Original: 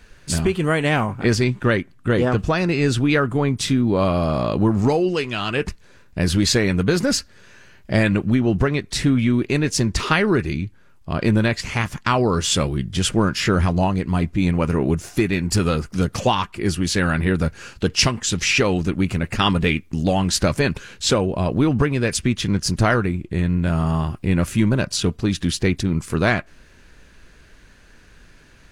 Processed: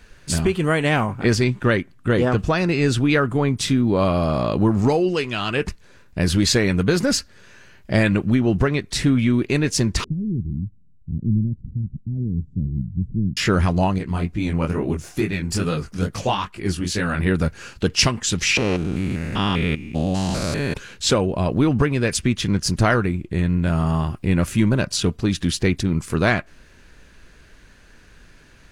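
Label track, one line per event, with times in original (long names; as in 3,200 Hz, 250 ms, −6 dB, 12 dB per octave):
10.040000	13.370000	inverse Chebyshev low-pass filter stop band from 1,000 Hz, stop band 70 dB
13.980000	17.200000	chorus effect 2.3 Hz, delay 18 ms, depth 6.9 ms
18.570000	20.750000	spectrum averaged block by block every 200 ms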